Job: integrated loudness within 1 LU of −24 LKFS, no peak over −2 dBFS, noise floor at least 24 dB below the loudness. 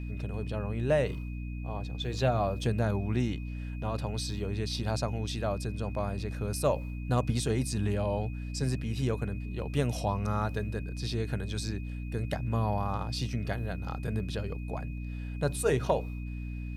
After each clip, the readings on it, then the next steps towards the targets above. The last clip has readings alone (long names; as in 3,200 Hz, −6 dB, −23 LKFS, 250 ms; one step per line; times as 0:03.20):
mains hum 60 Hz; hum harmonics up to 300 Hz; level of the hum −34 dBFS; interfering tone 2,500 Hz; level of the tone −52 dBFS; integrated loudness −32.5 LKFS; sample peak −13.5 dBFS; target loudness −24.0 LKFS
→ mains-hum notches 60/120/180/240/300 Hz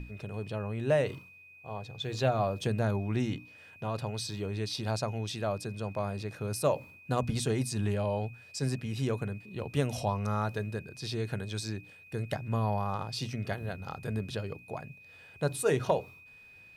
mains hum none found; interfering tone 2,500 Hz; level of the tone −52 dBFS
→ notch filter 2,500 Hz, Q 30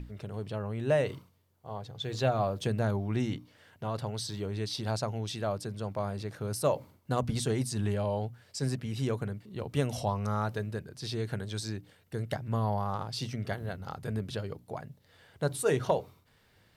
interfering tone none found; integrated loudness −33.5 LKFS; sample peak −14.0 dBFS; target loudness −24.0 LKFS
→ level +9.5 dB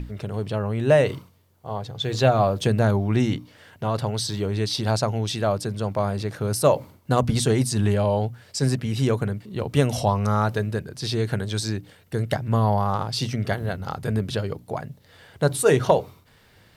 integrated loudness −24.0 LKFS; sample peak −4.5 dBFS; background noise floor −56 dBFS